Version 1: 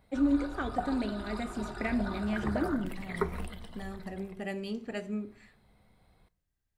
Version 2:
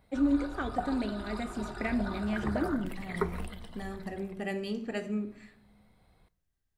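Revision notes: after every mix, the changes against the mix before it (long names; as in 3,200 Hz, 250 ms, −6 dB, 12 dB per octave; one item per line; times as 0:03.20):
second voice: send +9.5 dB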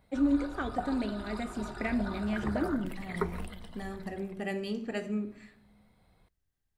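background: send off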